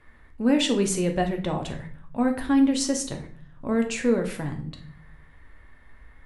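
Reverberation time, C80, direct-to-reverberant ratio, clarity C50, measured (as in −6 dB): 0.50 s, 15.0 dB, 3.5 dB, 10.0 dB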